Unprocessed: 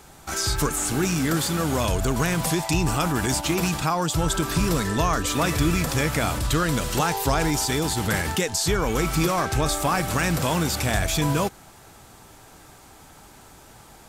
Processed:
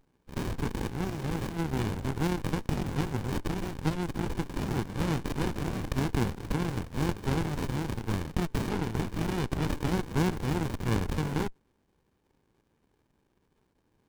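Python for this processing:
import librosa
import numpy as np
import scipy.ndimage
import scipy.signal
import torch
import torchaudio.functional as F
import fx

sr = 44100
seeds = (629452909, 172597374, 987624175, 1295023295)

y = fx.cheby_harmonics(x, sr, harmonics=(3, 7), levels_db=(-34, -15), full_scale_db=-8.5)
y = scipy.signal.sosfilt(scipy.signal.cheby1(3, 1.0, 400.0, 'highpass', fs=sr, output='sos'), y)
y = fx.running_max(y, sr, window=65)
y = F.gain(torch.from_numpy(y), -4.5).numpy()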